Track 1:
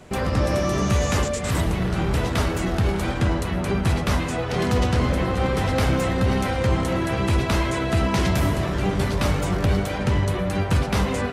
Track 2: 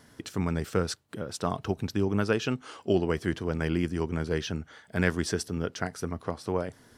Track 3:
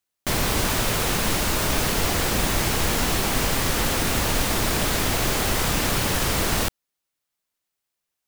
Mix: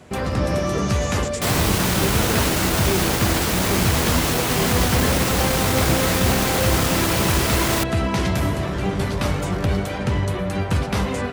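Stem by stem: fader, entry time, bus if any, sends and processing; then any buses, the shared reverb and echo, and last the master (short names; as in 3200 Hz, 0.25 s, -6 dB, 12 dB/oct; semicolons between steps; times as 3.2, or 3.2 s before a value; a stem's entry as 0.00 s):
0.0 dB, 0.00 s, no send, dry
-2.0 dB, 0.00 s, no send, spectral gate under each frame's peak -15 dB strong
+2.0 dB, 1.15 s, no send, one-sided fold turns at -19 dBFS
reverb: off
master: HPF 51 Hz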